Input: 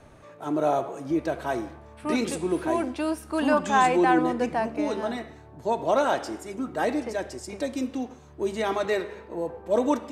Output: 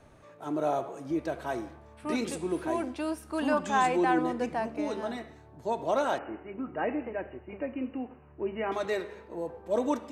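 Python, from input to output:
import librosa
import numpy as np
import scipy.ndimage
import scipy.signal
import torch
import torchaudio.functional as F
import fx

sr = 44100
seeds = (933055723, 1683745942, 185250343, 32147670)

y = fx.brickwall_lowpass(x, sr, high_hz=3000.0, at=(6.18, 8.72))
y = F.gain(torch.from_numpy(y), -5.0).numpy()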